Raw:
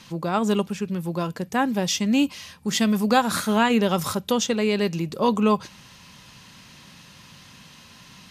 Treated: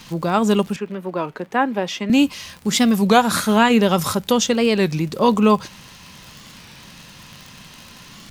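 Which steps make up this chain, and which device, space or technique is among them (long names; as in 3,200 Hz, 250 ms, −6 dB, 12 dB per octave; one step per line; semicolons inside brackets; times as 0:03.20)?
warped LP (wow of a warped record 33 1/3 rpm, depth 160 cents; surface crackle 48 per second −33 dBFS; pink noise bed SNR 35 dB)
0:00.76–0:02.10: three-way crossover with the lows and the highs turned down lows −16 dB, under 250 Hz, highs −16 dB, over 3,000 Hz
level +5 dB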